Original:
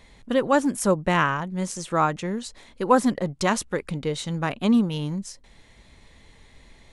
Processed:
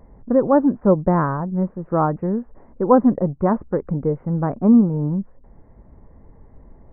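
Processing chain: Gaussian blur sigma 8.3 samples; gain +7 dB

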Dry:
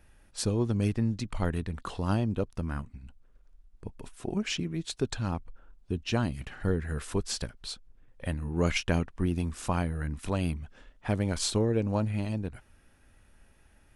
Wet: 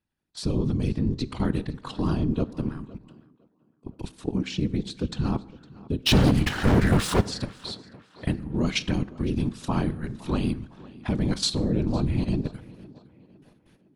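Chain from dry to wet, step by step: HPF 68 Hz 6 dB/oct; gate with hold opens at -51 dBFS; ten-band EQ 125 Hz +12 dB, 250 Hz +9 dB, 1000 Hz +5 dB, 4000 Hz +11 dB; level quantiser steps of 12 dB; 6.06–7.21 sample leveller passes 5; whisperiser; on a send: tape echo 0.509 s, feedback 47%, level -18.5 dB, low-pass 3600 Hz; on the sum: plate-style reverb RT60 0.85 s, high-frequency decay 0.6×, DRR 15.5 dB; 2.98–4.12 three-band expander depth 70%

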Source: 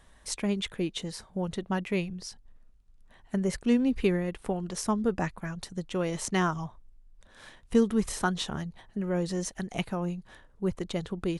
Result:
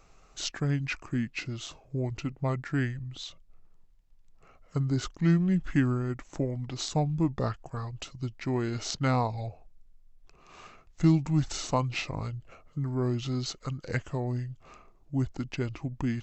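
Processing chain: wide varispeed 0.702×

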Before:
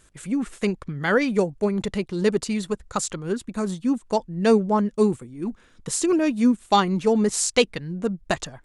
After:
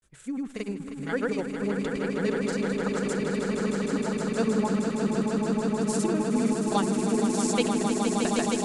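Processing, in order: grains, pitch spread up and down by 0 st; swelling echo 0.156 s, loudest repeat 8, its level -6.5 dB; gain -8 dB

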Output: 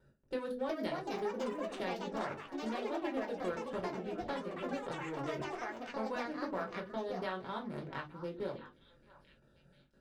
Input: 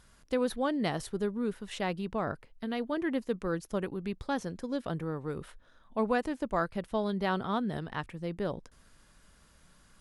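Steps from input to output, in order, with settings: Wiener smoothing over 41 samples; gate with hold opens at -54 dBFS; HPF 350 Hz 6 dB/oct; notches 50/100/150/200/250/300/350/400/450/500 Hz; compressor 3:1, threshold -47 dBFS, peak gain reduction 15.5 dB; delay with a stepping band-pass 0.66 s, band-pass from 1200 Hz, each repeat 1.4 oct, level -10.5 dB; reverb, pre-delay 5 ms, DRR -0.5 dB; echoes that change speed 0.433 s, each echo +4 st, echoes 3; gain +2 dB

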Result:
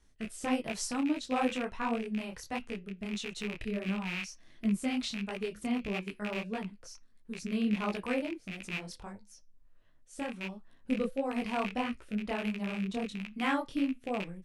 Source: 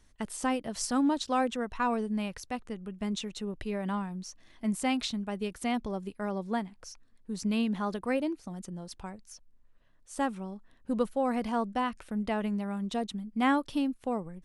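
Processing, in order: rattling part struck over -39 dBFS, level -22 dBFS; flange 0.27 Hz, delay 4.9 ms, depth 2.3 ms, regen -84%; rotary speaker horn 1.1 Hz; detuned doubles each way 52 cents; gain +7.5 dB

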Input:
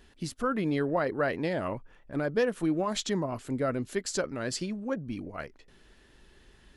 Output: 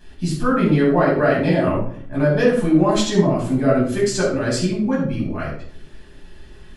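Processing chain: shoebox room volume 720 m³, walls furnished, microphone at 8.6 m

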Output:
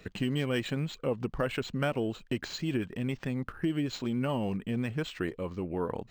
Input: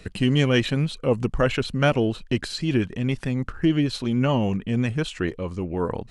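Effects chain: low shelf 93 Hz -10 dB; compressor 2.5:1, threshold -24 dBFS, peak gain reduction 6 dB; decimation joined by straight lines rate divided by 4×; gain -4 dB

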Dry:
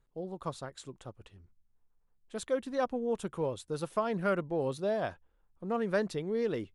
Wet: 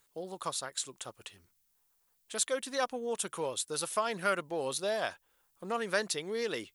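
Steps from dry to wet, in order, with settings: tilt +4.5 dB/oct; in parallel at 0 dB: compressor, threshold -45 dBFS, peak gain reduction 17.5 dB

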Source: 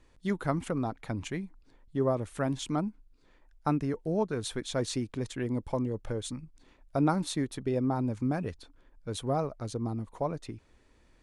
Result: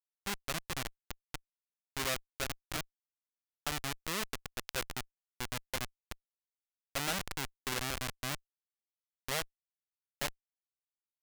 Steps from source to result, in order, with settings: Schmitt trigger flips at -26 dBFS; tilt shelf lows -9.5 dB, about 780 Hz

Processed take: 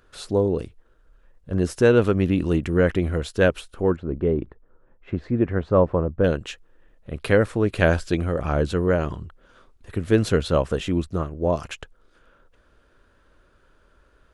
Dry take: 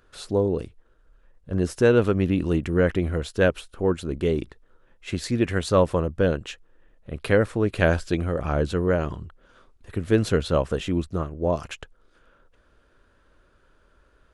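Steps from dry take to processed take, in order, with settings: 3.96–6.24 LPF 1200 Hz 12 dB/oct; gain +1.5 dB

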